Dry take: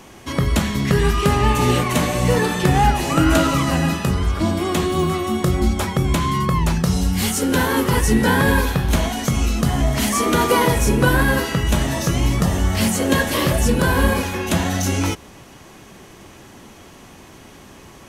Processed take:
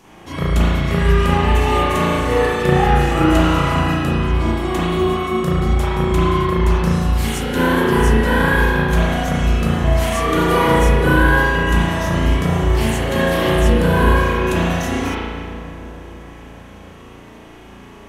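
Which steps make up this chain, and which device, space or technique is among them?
dub delay into a spring reverb (filtered feedback delay 301 ms, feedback 74%, low-pass 2 kHz, level -13 dB; spring tank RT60 1.5 s, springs 35 ms, chirp 80 ms, DRR -9 dB); trim -7.5 dB

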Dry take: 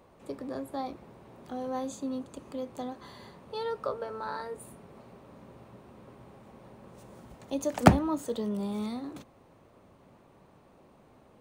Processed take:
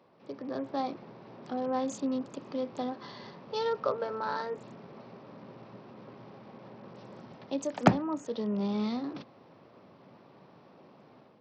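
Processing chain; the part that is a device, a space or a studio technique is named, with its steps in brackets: Bluetooth headset (high-pass 120 Hz 24 dB/octave; level rider gain up to 7 dB; resampled via 16 kHz; trim -4 dB; SBC 64 kbps 44.1 kHz)

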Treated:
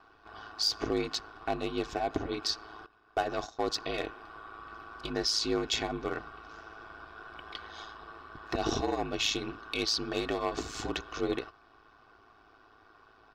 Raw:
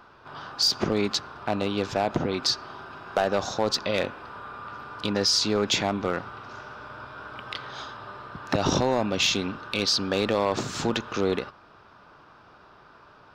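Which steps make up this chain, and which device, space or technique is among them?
2.86–3.73 s: gate -28 dBFS, range -16 dB; ring-modulated robot voice (ring modulator 54 Hz; comb 2.7 ms, depth 64%); trim -5.5 dB

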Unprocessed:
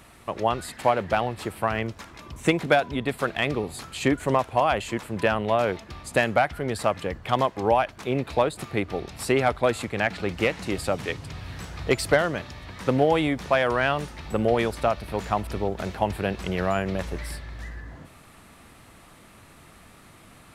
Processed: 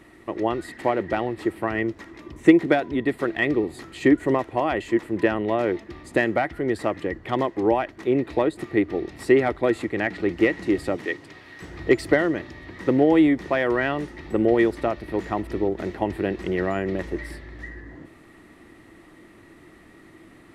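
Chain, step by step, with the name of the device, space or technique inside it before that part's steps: 10.96–11.61 s: high-pass 250 Hz -> 950 Hz 6 dB/octave; inside a helmet (treble shelf 5.8 kHz -7.5 dB; small resonant body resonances 330/1900 Hz, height 16 dB, ringing for 35 ms); trim -4 dB

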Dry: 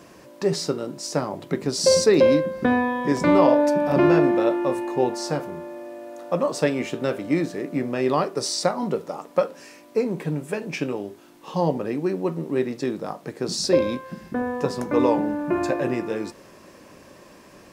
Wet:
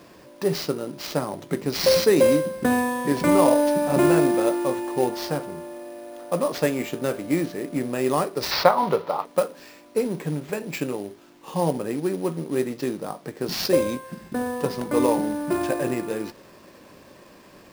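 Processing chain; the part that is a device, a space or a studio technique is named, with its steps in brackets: early companding sampler (sample-rate reducer 9.9 kHz, jitter 0%; companded quantiser 6-bit); 8.51–9.25 s: graphic EQ 125/250/500/1000/2000/4000/8000 Hz +4/-5/+4/+11/+4/+7/-10 dB; trim -1 dB

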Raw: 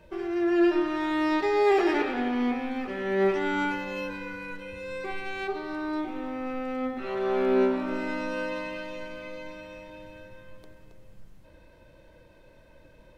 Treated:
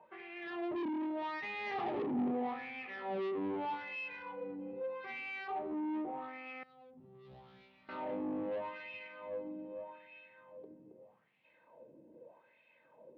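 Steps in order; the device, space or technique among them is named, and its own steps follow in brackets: wah-wah guitar rig (wah-wah 0.81 Hz 290–2500 Hz, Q 3.6; valve stage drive 41 dB, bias 0.25; cabinet simulation 96–3700 Hz, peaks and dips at 150 Hz +7 dB, 230 Hz +9 dB, 460 Hz +5 dB, 790 Hz +6 dB, 1.5 kHz -8 dB); 6.63–7.89 s: FFT filter 170 Hz 0 dB, 260 Hz -22 dB, 2.5 kHz -20 dB, 3.7 kHz -9 dB; trim +3.5 dB

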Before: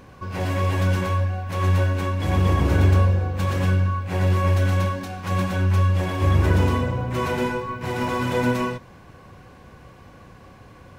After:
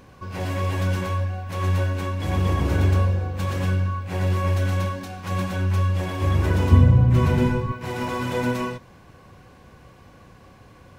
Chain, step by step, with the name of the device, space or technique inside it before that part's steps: 6.71–7.72 s: tone controls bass +15 dB, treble -2 dB; exciter from parts (in parallel at -11 dB: high-pass 2.2 kHz + saturation -36 dBFS, distortion -13 dB); on the sum: trim -2.5 dB

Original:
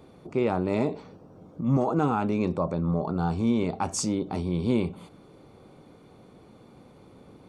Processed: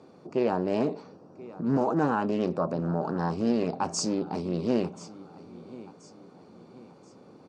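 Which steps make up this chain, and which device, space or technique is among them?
feedback delay 1031 ms, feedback 42%, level -18.5 dB; full-range speaker at full volume (loudspeaker Doppler distortion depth 0.44 ms; cabinet simulation 170–7900 Hz, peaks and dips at 2.1 kHz -6 dB, 3.4 kHz -8 dB, 4.9 kHz +5 dB)

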